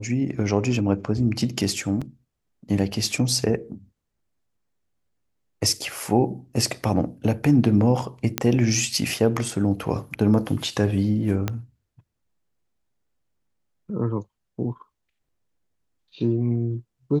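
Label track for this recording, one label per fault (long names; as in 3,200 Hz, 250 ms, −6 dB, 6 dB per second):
2.010000	2.020000	drop-out 5.8 ms
8.380000	8.380000	click −4 dBFS
11.480000	11.480000	click −11 dBFS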